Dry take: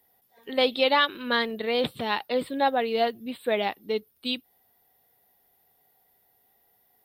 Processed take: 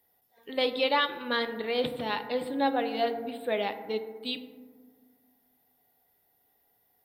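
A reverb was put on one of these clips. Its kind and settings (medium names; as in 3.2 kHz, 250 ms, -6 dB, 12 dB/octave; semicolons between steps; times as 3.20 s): FDN reverb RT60 1.6 s, low-frequency decay 1.35×, high-frequency decay 0.3×, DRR 7.5 dB; trim -4.5 dB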